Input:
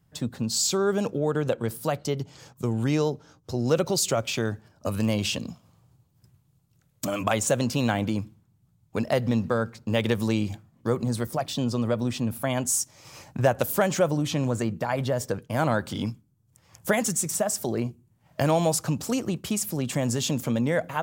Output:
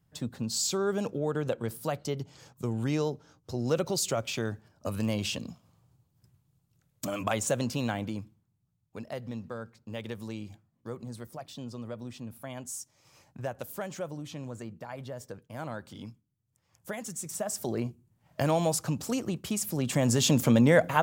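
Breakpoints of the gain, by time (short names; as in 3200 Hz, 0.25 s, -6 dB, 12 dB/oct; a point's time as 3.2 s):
7.63 s -5 dB
8.98 s -14 dB
17 s -14 dB
17.68 s -4 dB
19.55 s -4 dB
20.4 s +4 dB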